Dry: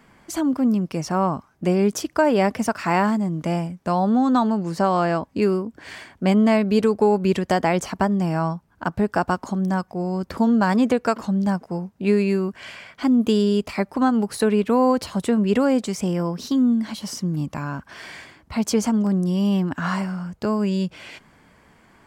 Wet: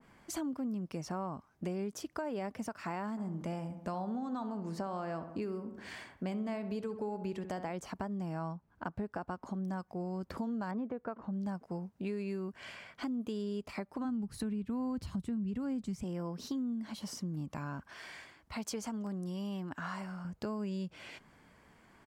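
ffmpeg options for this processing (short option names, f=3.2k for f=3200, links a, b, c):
-filter_complex "[0:a]asplit=3[a][b][c];[a]afade=t=out:st=3.16:d=0.02[d];[b]asplit=2[e][f];[f]adelay=66,lowpass=f=2.4k:p=1,volume=-11.5dB,asplit=2[g][h];[h]adelay=66,lowpass=f=2.4k:p=1,volume=0.54,asplit=2[i][j];[j]adelay=66,lowpass=f=2.4k:p=1,volume=0.54,asplit=2[k][l];[l]adelay=66,lowpass=f=2.4k:p=1,volume=0.54,asplit=2[m][n];[n]adelay=66,lowpass=f=2.4k:p=1,volume=0.54,asplit=2[o][p];[p]adelay=66,lowpass=f=2.4k:p=1,volume=0.54[q];[e][g][i][k][m][o][q]amix=inputs=7:normalize=0,afade=t=in:st=3.16:d=0.02,afade=t=out:st=7.7:d=0.02[r];[c]afade=t=in:st=7.7:d=0.02[s];[d][r][s]amix=inputs=3:normalize=0,asettb=1/sr,asplit=3[t][u][v];[t]atrim=end=8.524[w];[u]atrim=start=8.52:end=9.65,asetpts=PTS-STARTPTS,afade=t=in:d=0.004:c=qsin,afade=t=out:st=1.126:d=0.004:c=qsin,highshelf=f=4.1k:g=-9[x];[v]atrim=start=9.646[y];[w][x]acrossfade=d=0.004:c1=hsin:c2=qsin[z];[z][y]acrossfade=d=0.004:c1=qsin:c2=hsin,asettb=1/sr,asplit=3[aa][ab][ac];[aa]atrim=end=10.714[ad];[ab]atrim=start=10.71:end=11.33,asetpts=PTS-STARTPTS,afade=t=in:d=0.004:c=qsin,afade=t=out:st=0.616:d=0.004:c=qsin,lowpass=1.6k[ae];[ac]atrim=start=11.326[af];[ad][ae]acrossfade=d=0.004:c1=hsin:c2=qsin[ag];[ag][af]acrossfade=d=0.004:c1=qsin:c2=hsin,asplit=3[ah][ai][aj];[ah]afade=t=out:st=14.04:d=0.02[ak];[ai]asubboost=boost=10.5:cutoff=160,afade=t=in:st=14.04:d=0.02,afade=t=out:st=16.02:d=0.02[al];[aj]afade=t=in:st=16.02:d=0.02[am];[ak][al][am]amix=inputs=3:normalize=0,asettb=1/sr,asplit=3[an][ao][ap];[an]atrim=end=17.874[aq];[ao]atrim=start=17.87:end=20.25,asetpts=PTS-STARTPTS,afade=t=in:d=0.004:c=qsin,afade=t=out:st=2.376:d=0.004:c=qsin,equalizer=f=160:w=0.33:g=-6.5[ar];[ap]atrim=start=20.246[as];[aq][ar]acrossfade=d=0.004:c1=hsin:c2=qsin[at];[at][as]acrossfade=d=0.004:c1=qsin:c2=hsin,alimiter=limit=-12.5dB:level=0:latency=1:release=407,acompressor=threshold=-29dB:ratio=3,adynamicequalizer=threshold=0.00501:dfrequency=1600:dqfactor=0.7:tfrequency=1600:tqfactor=0.7:attack=5:release=100:ratio=0.375:range=1.5:mode=cutabove:tftype=highshelf,volume=-8dB"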